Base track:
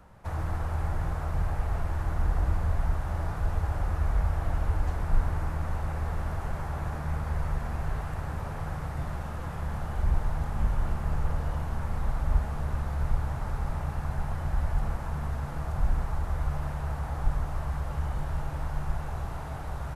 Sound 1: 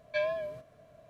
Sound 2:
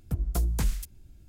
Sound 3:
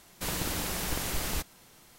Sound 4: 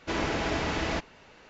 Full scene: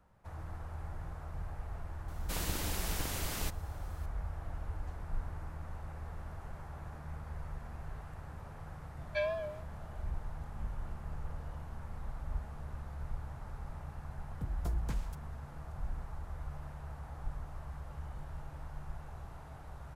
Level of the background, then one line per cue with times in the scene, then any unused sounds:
base track -13 dB
2.08 s: add 3 -5.5 dB
9.01 s: add 1 -3 dB
14.30 s: add 2 -9 dB + low-pass 3 kHz 6 dB/octave
not used: 4

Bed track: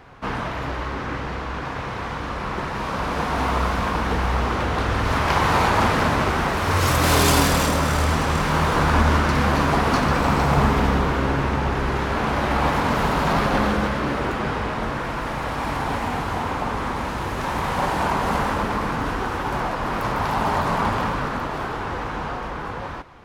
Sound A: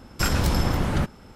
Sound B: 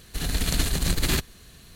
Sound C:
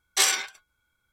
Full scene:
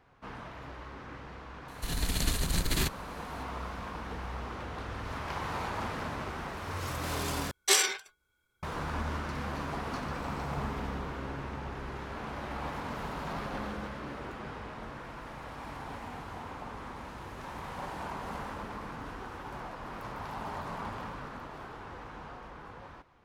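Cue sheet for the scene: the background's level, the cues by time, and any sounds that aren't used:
bed track -17 dB
1.68 s: add B -5.5 dB
7.51 s: replace with C -3 dB + peaking EQ 400 Hz +10.5 dB 0.42 oct
not used: A

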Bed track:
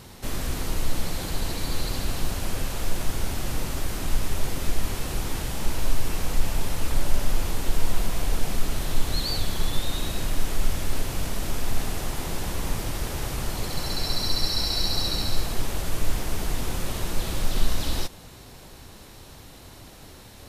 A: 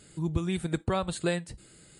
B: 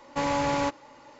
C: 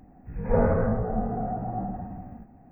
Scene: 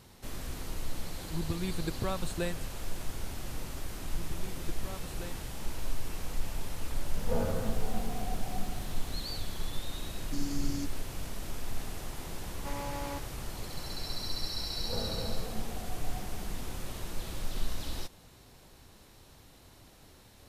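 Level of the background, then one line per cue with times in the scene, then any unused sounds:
bed track -10.5 dB
1.14 s: add A -6 dB
3.95 s: add A -17 dB
6.78 s: add C -10.5 dB + bit crusher 9-bit
10.16 s: add B -4.5 dB + brick-wall FIR band-stop 410–4200 Hz
12.49 s: add B -13.5 dB
14.39 s: add C -16.5 dB + delay 279 ms -6 dB

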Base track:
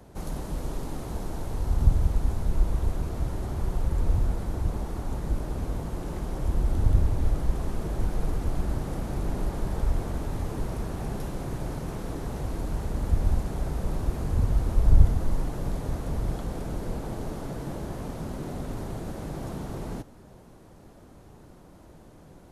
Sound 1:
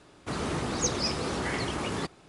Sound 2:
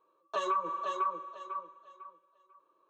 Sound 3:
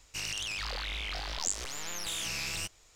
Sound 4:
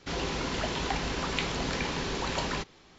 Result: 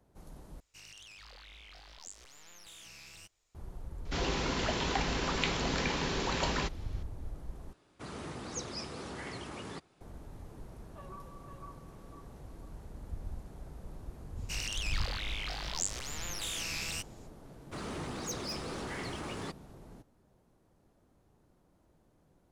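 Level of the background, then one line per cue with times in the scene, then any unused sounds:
base track -17.5 dB
0.60 s: replace with 3 -16.5 dB
4.05 s: add 4 -1 dB
7.73 s: replace with 1 -11.5 dB
10.62 s: add 2 -17.5 dB + distance through air 420 m
14.35 s: add 3 -2 dB, fades 0.05 s
17.45 s: add 1 -15 dB + waveshaping leveller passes 2

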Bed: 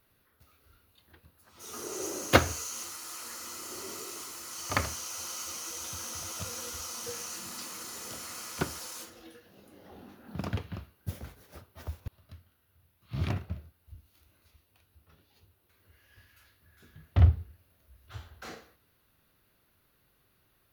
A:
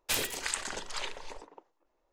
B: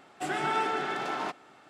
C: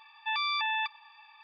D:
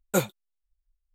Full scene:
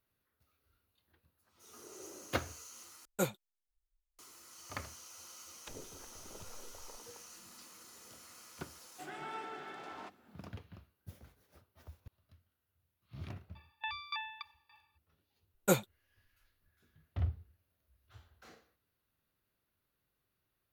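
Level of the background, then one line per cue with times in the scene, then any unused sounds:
bed -14 dB
3.05 s: replace with D -9 dB
5.58 s: add A -9.5 dB + low-pass that closes with the level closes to 500 Hz, closed at -33 dBFS
8.78 s: add B -15 dB
13.55 s: add C -5 dB + sawtooth tremolo in dB decaying 3.5 Hz, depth 21 dB
15.54 s: add D -4 dB

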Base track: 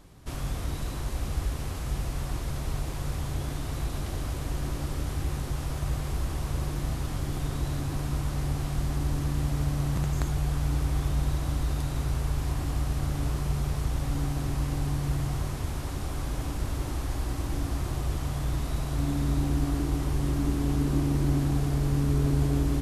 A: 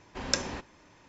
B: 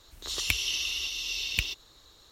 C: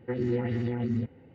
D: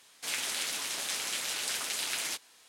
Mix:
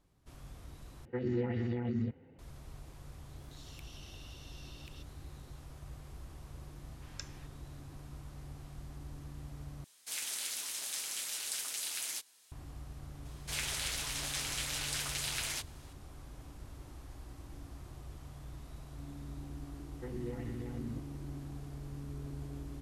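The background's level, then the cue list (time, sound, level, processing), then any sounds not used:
base track -18.5 dB
1.05 s: replace with C -5 dB
3.29 s: add B -13 dB + compression 3:1, threshold -44 dBFS
6.86 s: add A -17.5 dB + high-pass 1.2 kHz
9.84 s: replace with D -11.5 dB + treble shelf 4.9 kHz +12 dB
13.25 s: add D -3.5 dB
19.94 s: add C -13 dB

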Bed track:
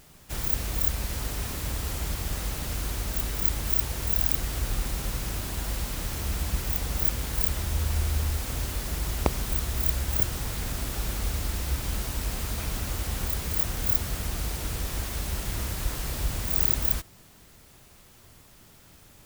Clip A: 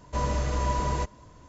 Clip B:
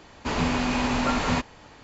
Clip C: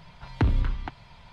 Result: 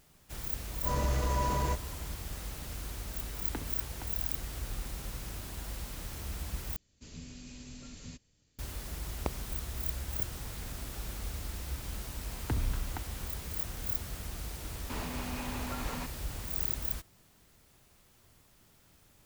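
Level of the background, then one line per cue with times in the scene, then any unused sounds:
bed track -9.5 dB
0.70 s: add A -3 dB + transient shaper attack -7 dB, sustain +3 dB
3.14 s: add C -12.5 dB + high-pass 200 Hz
6.76 s: replace with B -17.5 dB + FFT filter 130 Hz 0 dB, 550 Hz -13 dB, 880 Hz -25 dB, 1.3 kHz -18 dB, 7.8 kHz +7 dB
12.09 s: add C -8 dB + gain riding
14.65 s: add B -6 dB + compression, threshold -30 dBFS

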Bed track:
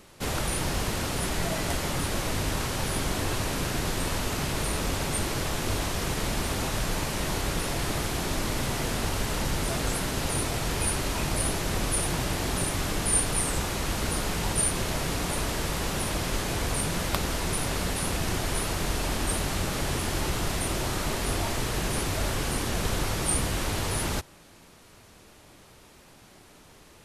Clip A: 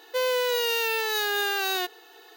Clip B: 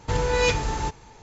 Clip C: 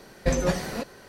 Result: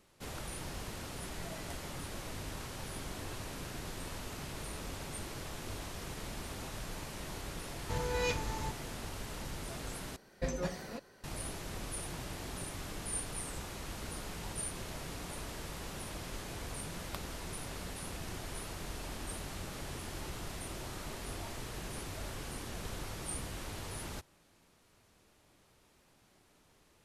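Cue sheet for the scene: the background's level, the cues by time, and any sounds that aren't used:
bed track -14 dB
7.81 s: add B -12 dB
10.16 s: replace with C -12 dB
not used: A

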